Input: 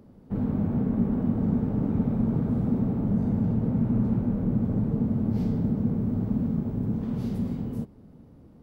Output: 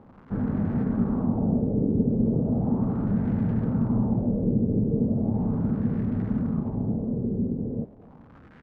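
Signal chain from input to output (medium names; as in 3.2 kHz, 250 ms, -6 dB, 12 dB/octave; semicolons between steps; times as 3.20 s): local Wiener filter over 9 samples; crackle 320 per s -38 dBFS; LFO low-pass sine 0.37 Hz 430–1800 Hz; speakerphone echo 260 ms, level -19 dB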